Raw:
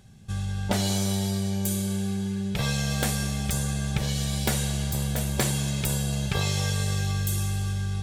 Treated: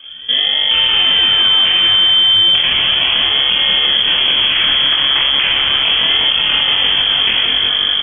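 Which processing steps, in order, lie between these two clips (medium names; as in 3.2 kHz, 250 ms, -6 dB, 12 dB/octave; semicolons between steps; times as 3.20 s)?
elliptic band-stop 250–1800 Hz; decimation with a swept rate 23×, swing 100% 0.35 Hz; doubling 25 ms -2 dB; feedback echo behind a high-pass 179 ms, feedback 77%, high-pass 1.5 kHz, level -5 dB; frequency inversion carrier 3.3 kHz; loudness maximiser +20 dB; trim -3.5 dB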